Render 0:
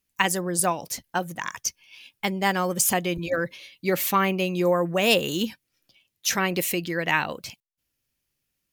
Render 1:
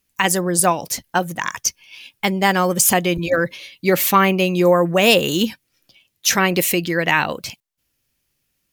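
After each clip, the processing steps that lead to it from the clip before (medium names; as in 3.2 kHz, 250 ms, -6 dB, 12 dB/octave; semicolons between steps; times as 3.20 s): loudness maximiser +8.5 dB; trim -1 dB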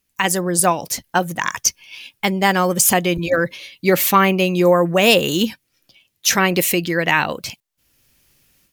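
level rider gain up to 14 dB; trim -1 dB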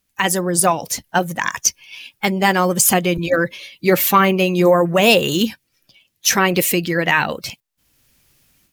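coarse spectral quantiser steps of 15 dB; trim +1 dB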